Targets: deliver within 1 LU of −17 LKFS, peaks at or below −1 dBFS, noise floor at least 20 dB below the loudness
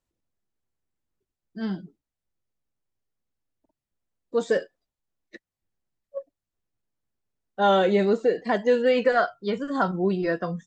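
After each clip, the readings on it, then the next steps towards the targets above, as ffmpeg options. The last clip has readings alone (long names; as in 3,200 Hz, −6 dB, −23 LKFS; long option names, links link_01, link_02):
integrated loudness −24.0 LKFS; sample peak −10.0 dBFS; target loudness −17.0 LKFS
→ -af "volume=7dB"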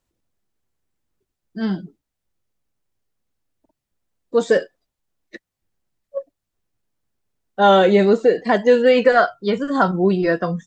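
integrated loudness −17.0 LKFS; sample peak −3.0 dBFS; background noise floor −82 dBFS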